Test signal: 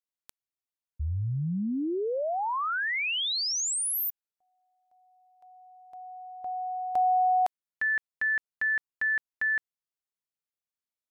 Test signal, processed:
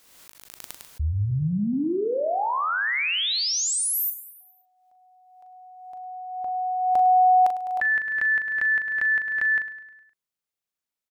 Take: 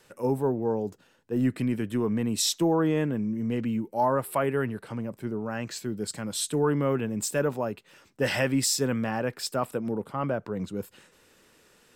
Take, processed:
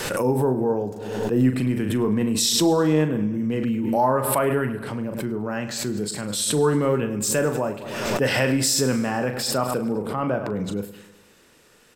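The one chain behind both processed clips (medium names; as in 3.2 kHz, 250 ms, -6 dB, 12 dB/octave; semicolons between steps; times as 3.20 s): doubling 39 ms -8 dB; feedback delay 103 ms, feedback 54%, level -14.5 dB; swell ahead of each attack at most 41 dB/s; trim +3.5 dB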